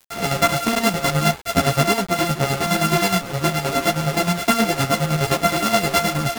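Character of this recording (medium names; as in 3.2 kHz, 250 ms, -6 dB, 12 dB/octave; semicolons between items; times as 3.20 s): a buzz of ramps at a fixed pitch in blocks of 64 samples; chopped level 9.6 Hz, depth 60%, duty 45%; a quantiser's noise floor 6-bit, dither none; a shimmering, thickened sound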